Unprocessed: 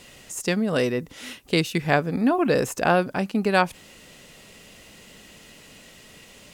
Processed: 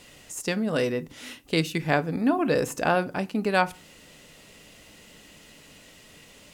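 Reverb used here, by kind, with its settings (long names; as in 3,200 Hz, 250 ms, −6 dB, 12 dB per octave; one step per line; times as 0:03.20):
feedback delay network reverb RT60 0.31 s, low-frequency decay 1.55×, high-frequency decay 0.8×, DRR 13 dB
level −3 dB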